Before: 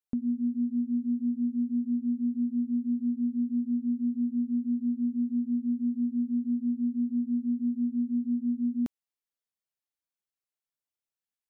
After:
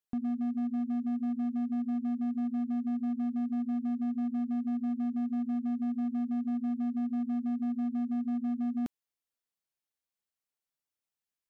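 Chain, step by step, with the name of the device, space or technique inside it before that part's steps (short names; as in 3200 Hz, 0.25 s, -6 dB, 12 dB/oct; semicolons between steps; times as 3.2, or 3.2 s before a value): limiter into clipper (limiter -25.5 dBFS, peak gain reduction 3 dB; hard clip -28.5 dBFS, distortion -17 dB)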